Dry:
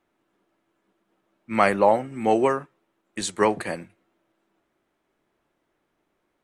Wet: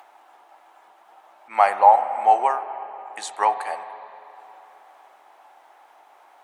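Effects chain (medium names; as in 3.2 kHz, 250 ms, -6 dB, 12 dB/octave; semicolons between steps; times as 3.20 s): in parallel at -0.5 dB: upward compressor, threshold -24 dBFS; on the sum: resonant high-pass 800 Hz, resonance Q 6; reverberation RT60 3.5 s, pre-delay 40 ms, DRR 10 dB; trim -10.5 dB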